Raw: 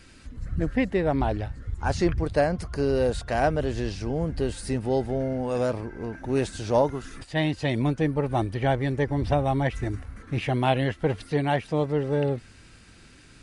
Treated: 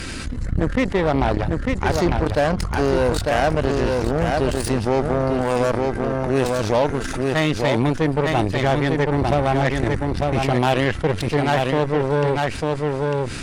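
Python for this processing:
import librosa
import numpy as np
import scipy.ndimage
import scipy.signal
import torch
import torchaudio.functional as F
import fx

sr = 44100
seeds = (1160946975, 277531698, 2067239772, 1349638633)

p1 = fx.tracing_dist(x, sr, depth_ms=0.023)
p2 = np.clip(p1, -10.0 ** (-20.0 / 20.0), 10.0 ** (-20.0 / 20.0))
p3 = p1 + (p2 * librosa.db_to_amplitude(-12.0))
p4 = fx.cheby_harmonics(p3, sr, harmonics=(7, 8), levels_db=(-19, -26), full_scale_db=-9.0)
p5 = p4 + 10.0 ** (-8.5 / 20.0) * np.pad(p4, (int(899 * sr / 1000.0), 0))[:len(p4)]
y = fx.env_flatten(p5, sr, amount_pct=70)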